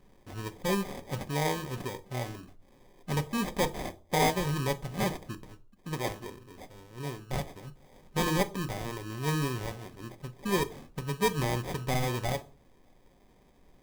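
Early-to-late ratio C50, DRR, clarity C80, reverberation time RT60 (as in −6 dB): 20.0 dB, 8.0 dB, 24.5 dB, 0.40 s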